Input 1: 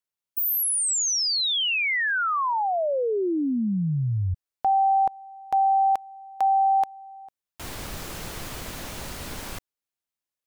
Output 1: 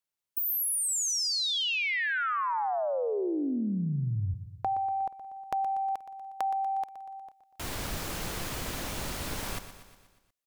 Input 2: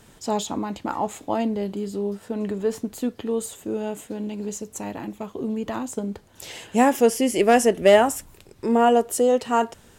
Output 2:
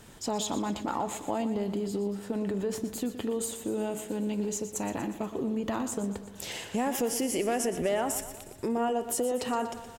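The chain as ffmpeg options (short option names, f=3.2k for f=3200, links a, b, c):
-af "acompressor=threshold=-31dB:ratio=4:attack=22:release=37:knee=1:detection=rms,aecho=1:1:120|240|360|480|600|720:0.251|0.143|0.0816|0.0465|0.0265|0.0151"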